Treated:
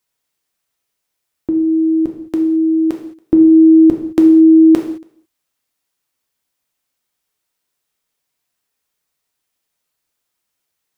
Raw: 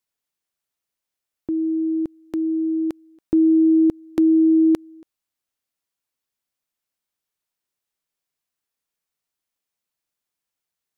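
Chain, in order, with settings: non-linear reverb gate 0.24 s falling, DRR 2 dB; gain +7.5 dB

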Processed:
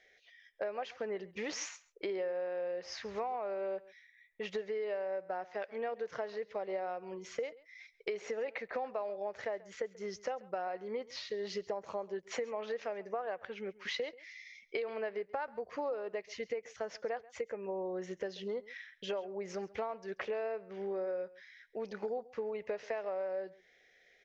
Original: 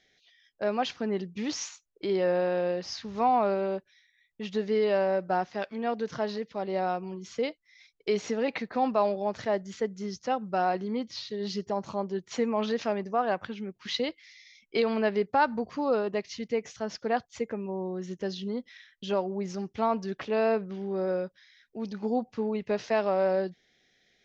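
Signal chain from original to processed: graphic EQ 125/250/500/2000/4000 Hz -9/-9/+10/+8/-5 dB; compressor 10:1, threshold -32 dBFS, peak gain reduction 17.5 dB; echo 0.136 s -20.5 dB; gain -2.5 dB

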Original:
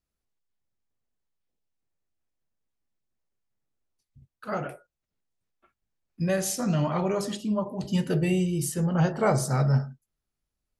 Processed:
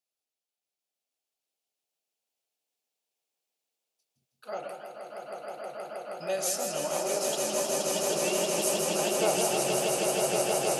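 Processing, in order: HPF 620 Hz 12 dB/oct; band shelf 1400 Hz -10 dB 1.3 oct; on a send: swelling echo 0.158 s, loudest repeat 8, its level -5 dB; on the sum: warbling echo 0.17 s, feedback 45%, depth 136 cents, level -6.5 dB

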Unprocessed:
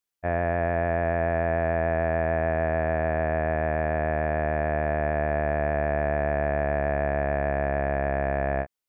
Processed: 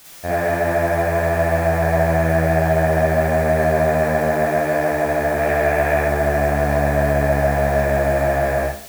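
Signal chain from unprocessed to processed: 5.38–6.03 high shelf 2300 Hz +11 dB; requantised 8-bit, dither triangular; Schroeder reverb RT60 0.47 s, DRR -5.5 dB; gain +1.5 dB

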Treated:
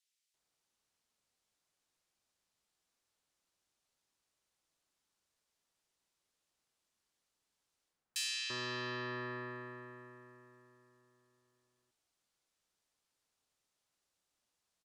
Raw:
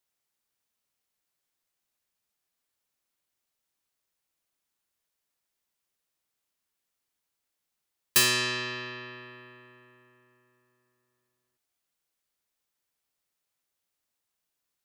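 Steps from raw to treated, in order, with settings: LPF 8600 Hz 12 dB/oct; reverse; compressor 5:1, threshold -37 dBFS, peak gain reduction 16 dB; reverse; bands offset in time highs, lows 0.34 s, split 2100 Hz; gain +2 dB

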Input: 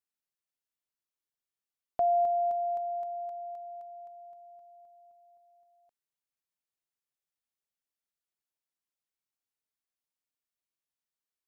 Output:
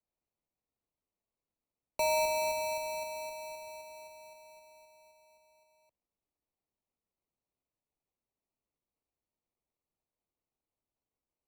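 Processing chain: modulation noise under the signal 24 dB; sample-and-hold 26×; frequency shift -73 Hz; gain -3.5 dB

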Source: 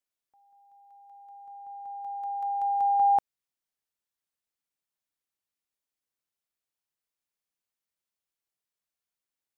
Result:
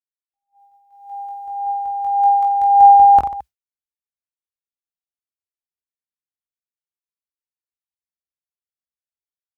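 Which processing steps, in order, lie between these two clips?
bell 64 Hz +14.5 dB 1 oct; reverse bouncing-ball echo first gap 20 ms, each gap 1.4×, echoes 5; phaser 0.35 Hz, delay 3 ms, feedback 36%; AGC gain up to 14 dB; expander -32 dBFS

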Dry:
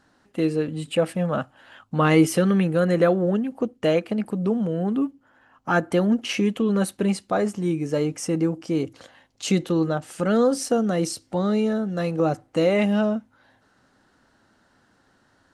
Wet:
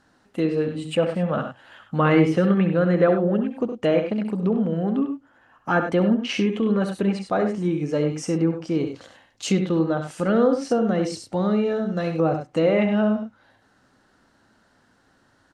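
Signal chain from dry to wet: loudspeakers at several distances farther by 23 m -9 dB, 34 m -10 dB; treble ducked by the level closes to 2700 Hz, closed at -16.5 dBFS

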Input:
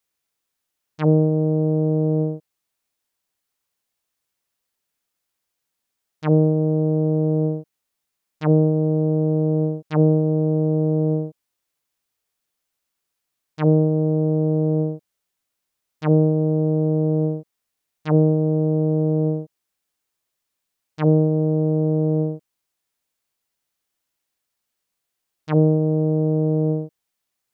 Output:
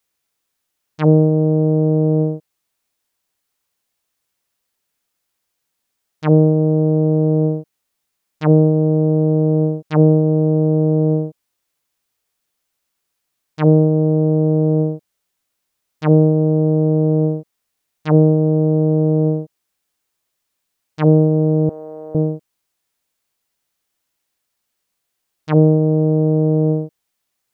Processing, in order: 21.69–22.15 HPF 960 Hz 12 dB/oct; gain +4.5 dB

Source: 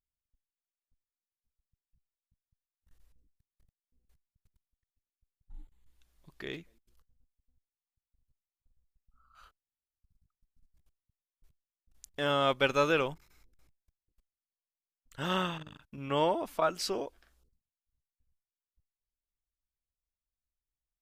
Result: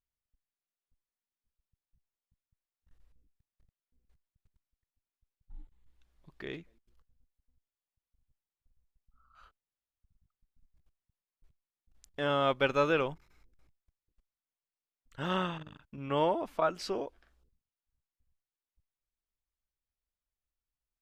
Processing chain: LPF 2700 Hz 6 dB/oct

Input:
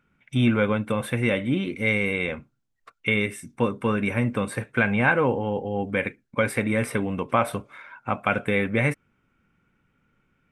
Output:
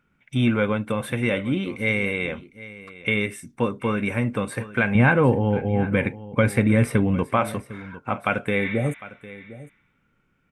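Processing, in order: 4.95–7.24 low shelf 240 Hz +12 dB; 8.64–9.59 spectral repair 830–6100 Hz both; echo 0.754 s -17 dB

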